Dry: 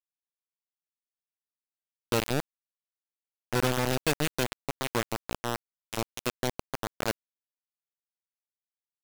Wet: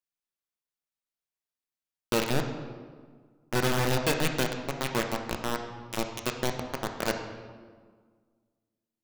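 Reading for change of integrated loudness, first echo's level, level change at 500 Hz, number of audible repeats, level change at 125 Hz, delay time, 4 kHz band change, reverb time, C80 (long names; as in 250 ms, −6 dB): +1.0 dB, no echo audible, +1.5 dB, no echo audible, +1.5 dB, no echo audible, +1.0 dB, 1.6 s, 8.0 dB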